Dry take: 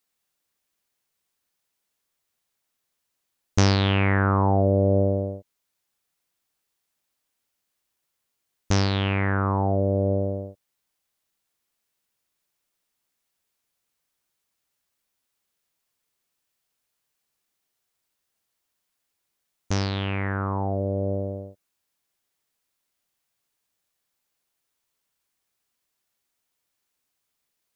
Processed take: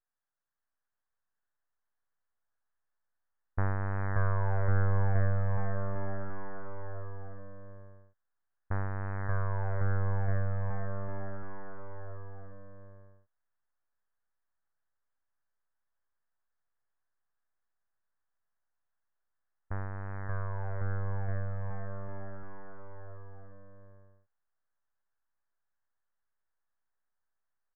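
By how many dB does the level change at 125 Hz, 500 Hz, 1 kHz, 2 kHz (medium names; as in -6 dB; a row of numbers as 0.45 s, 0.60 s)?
-6.0 dB, -13.0 dB, -10.0 dB, -9.5 dB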